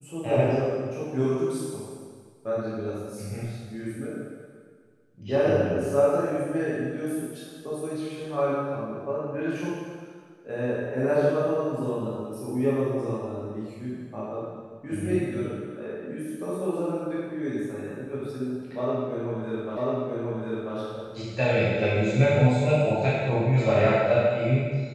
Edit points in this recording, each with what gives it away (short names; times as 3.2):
19.77 repeat of the last 0.99 s